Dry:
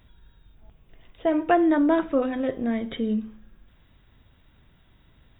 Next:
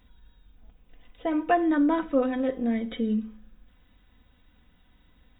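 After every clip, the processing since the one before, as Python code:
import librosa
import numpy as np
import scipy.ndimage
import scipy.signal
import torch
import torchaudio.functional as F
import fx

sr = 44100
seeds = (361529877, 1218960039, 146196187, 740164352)

y = x + 0.61 * np.pad(x, (int(4.0 * sr / 1000.0), 0))[:len(x)]
y = y * 10.0 ** (-4.0 / 20.0)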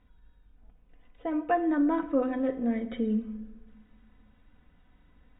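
y = fx.rider(x, sr, range_db=10, speed_s=2.0)
y = scipy.signal.sosfilt(scipy.signal.butter(2, 2200.0, 'lowpass', fs=sr, output='sos'), y)
y = fx.room_shoebox(y, sr, seeds[0], volume_m3=1100.0, walls='mixed', distance_m=0.35)
y = y * 10.0 ** (-2.5 / 20.0)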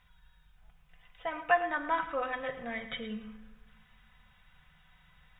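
y = fx.curve_eq(x, sr, hz=(100.0, 160.0, 260.0, 790.0, 1300.0, 2900.0), db=(0, 8, -18, 6, 10, 14))
y = y + 10.0 ** (-13.0 / 20.0) * np.pad(y, (int(110 * sr / 1000.0), 0))[:len(y)]
y = y * 10.0 ** (-4.0 / 20.0)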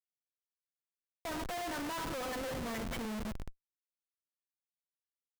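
y = fx.high_shelf(x, sr, hz=2000.0, db=-10.0)
y = fx.schmitt(y, sr, flips_db=-44.5)
y = y * 10.0 ** (1.0 / 20.0)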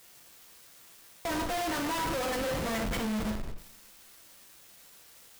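y = x + 0.5 * 10.0 ** (-51.5 / 20.0) * np.sign(x)
y = fx.rev_double_slope(y, sr, seeds[1], early_s=0.44, late_s=1.9, knee_db=-27, drr_db=2.0)
y = fx.leveller(y, sr, passes=3)
y = y * 10.0 ** (-2.5 / 20.0)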